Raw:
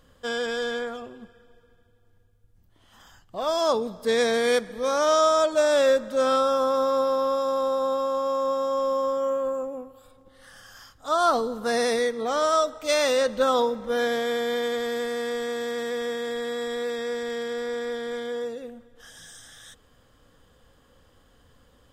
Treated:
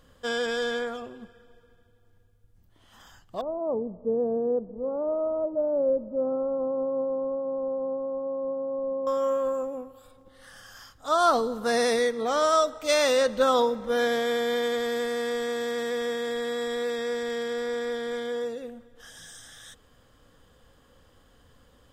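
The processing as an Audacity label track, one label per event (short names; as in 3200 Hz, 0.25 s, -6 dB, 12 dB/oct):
3.410000	9.070000	Gaussian blur sigma 13 samples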